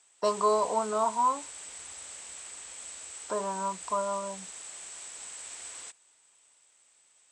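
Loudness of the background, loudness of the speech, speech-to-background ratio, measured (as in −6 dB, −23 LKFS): −41.0 LKFS, −29.5 LKFS, 11.5 dB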